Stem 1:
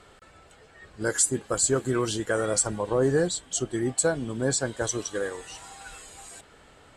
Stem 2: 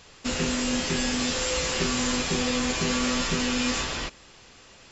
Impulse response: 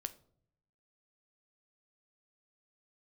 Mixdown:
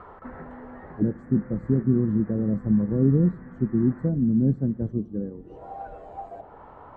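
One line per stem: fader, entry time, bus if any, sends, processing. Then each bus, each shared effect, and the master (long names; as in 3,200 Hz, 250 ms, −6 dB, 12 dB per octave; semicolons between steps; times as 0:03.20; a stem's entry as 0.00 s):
+2.0 dB, 0.00 s, send −6 dB, envelope-controlled low-pass 210–1,200 Hz down, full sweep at −31 dBFS
−0.5 dB, 0.00 s, no send, Butterworth low-pass 1,900 Hz 72 dB per octave; downward compressor 6 to 1, threshold −35 dBFS, peak gain reduction 12 dB; automatic ducking −9 dB, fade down 1.05 s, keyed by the first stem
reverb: on, pre-delay 8 ms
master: no processing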